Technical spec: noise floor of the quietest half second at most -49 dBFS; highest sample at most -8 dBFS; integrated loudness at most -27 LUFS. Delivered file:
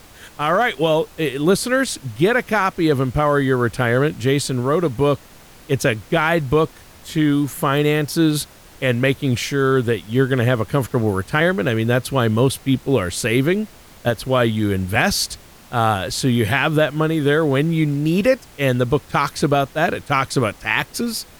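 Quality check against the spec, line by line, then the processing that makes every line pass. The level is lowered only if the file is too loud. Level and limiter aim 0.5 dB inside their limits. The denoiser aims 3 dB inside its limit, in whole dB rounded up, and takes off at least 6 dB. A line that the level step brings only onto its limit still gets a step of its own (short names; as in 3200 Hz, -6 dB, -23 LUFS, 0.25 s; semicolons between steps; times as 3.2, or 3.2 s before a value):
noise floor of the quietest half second -44 dBFS: fail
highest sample -4.5 dBFS: fail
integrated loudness -19.0 LUFS: fail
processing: gain -8.5 dB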